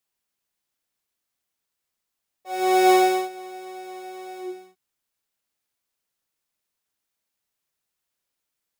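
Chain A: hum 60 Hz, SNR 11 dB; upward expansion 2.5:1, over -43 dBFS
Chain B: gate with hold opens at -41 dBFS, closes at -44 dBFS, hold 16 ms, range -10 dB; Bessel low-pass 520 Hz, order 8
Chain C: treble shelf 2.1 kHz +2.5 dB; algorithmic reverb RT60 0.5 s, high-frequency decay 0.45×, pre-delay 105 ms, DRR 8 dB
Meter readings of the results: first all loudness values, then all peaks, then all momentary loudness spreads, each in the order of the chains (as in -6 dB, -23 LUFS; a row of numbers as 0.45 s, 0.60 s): -22.5 LUFS, -23.5 LUFS, -18.5 LUFS; -8.5 dBFS, -12.0 dBFS, -6.5 dBFS; 18 LU, 20 LU, 20 LU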